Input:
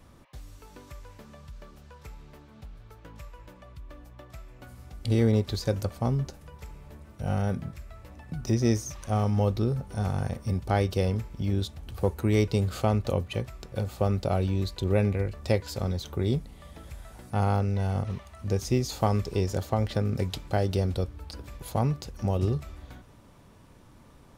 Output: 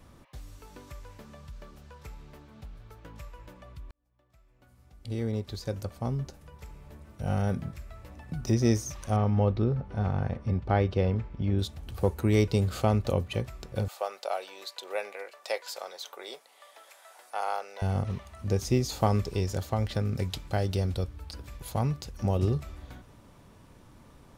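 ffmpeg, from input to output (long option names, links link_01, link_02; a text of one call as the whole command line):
ffmpeg -i in.wav -filter_complex "[0:a]asettb=1/sr,asplit=3[link_01][link_02][link_03];[link_01]atrim=end=9.164[link_04];[link_02]atrim=start=9.16:end=11.59,asetpts=PTS-STARTPTS,afade=type=in:duration=0.004:curve=qsin,afade=type=out:start_time=2.426:duration=0.004:curve=qsin,lowpass=2800[link_05];[link_03]atrim=start=11.586[link_06];[link_04][link_05]acrossfade=duration=0.004:curve1=hsin:curve2=qsin[link_07];[link_07][link_06]acrossfade=duration=0.004:curve1=qsin:curve2=hsin,asettb=1/sr,asplit=3[link_08][link_09][link_10];[link_08]atrim=end=13.884[link_11];[link_09]atrim=start=13.88:end=17.82,asetpts=PTS-STARTPTS,afade=type=in:duration=0.004:curve=qsin,afade=type=out:start_time=3.936:duration=0.004:curve=qsin,highpass=frequency=590:width=0.5412,highpass=frequency=590:width=1.3066[link_12];[link_10]atrim=start=17.816[link_13];[link_11][link_12]acrossfade=duration=0.004:curve1=hsin:curve2=qsin[link_14];[link_14][link_13]acrossfade=duration=0.004:curve1=qsin:curve2=hsin,asettb=1/sr,asplit=3[link_15][link_16][link_17];[link_15]atrim=end=19.304[link_18];[link_16]atrim=start=19.3:end=22.2,asetpts=PTS-STARTPTS,afade=type=in:duration=0.004:curve=qsin,afade=type=out:start_time=2.896:duration=0.004:curve=qsin,equalizer=frequency=400:width=0.41:gain=-4[link_19];[link_17]atrim=start=22.196[link_20];[link_18][link_19]acrossfade=duration=0.004:curve1=hsin:curve2=qsin[link_21];[link_21][link_20]acrossfade=duration=0.004:curve1=qsin:curve2=hsin,asplit=2[link_22][link_23];[link_22]atrim=end=3.91,asetpts=PTS-STARTPTS,afade=type=out:start_time=3.906:duration=0.004:curve=hsin[link_24];[link_23]atrim=start=3.91,asetpts=PTS-STARTPTS,afade=type=in:duration=3.66[link_25];[link_24][link_25]concat=n=2:v=0:a=1" out.wav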